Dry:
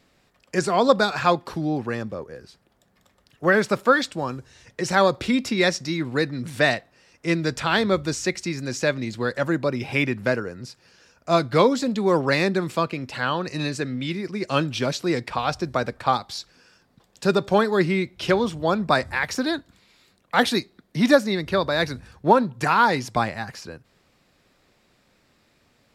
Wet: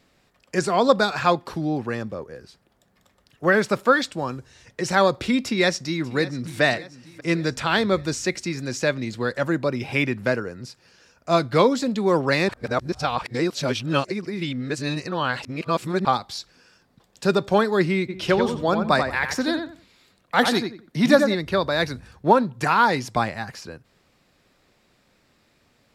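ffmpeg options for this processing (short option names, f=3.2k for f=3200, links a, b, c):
-filter_complex "[0:a]asplit=2[a][b];[b]afade=t=in:st=5.44:d=0.01,afade=t=out:st=6.61:d=0.01,aecho=0:1:590|1180|1770|2360|2950:0.133352|0.0733437|0.040339|0.0221865|0.0122026[c];[a][c]amix=inputs=2:normalize=0,asplit=3[d][e][f];[d]afade=t=out:st=18.08:d=0.02[g];[e]asplit=2[h][i];[i]adelay=89,lowpass=f=2.3k:p=1,volume=-5.5dB,asplit=2[j][k];[k]adelay=89,lowpass=f=2.3k:p=1,volume=0.25,asplit=2[l][m];[m]adelay=89,lowpass=f=2.3k:p=1,volume=0.25[n];[h][j][l][n]amix=inputs=4:normalize=0,afade=t=in:st=18.08:d=0.02,afade=t=out:st=21.34:d=0.02[o];[f]afade=t=in:st=21.34:d=0.02[p];[g][o][p]amix=inputs=3:normalize=0,asplit=3[q][r][s];[q]atrim=end=12.492[t];[r]atrim=start=12.488:end=16.052,asetpts=PTS-STARTPTS,areverse[u];[s]atrim=start=16.048[v];[t][u]acrossfade=d=0.004:c1=hsin:c2=hsin[w];[w][v]acrossfade=d=0.004:c1=hsin:c2=hsin"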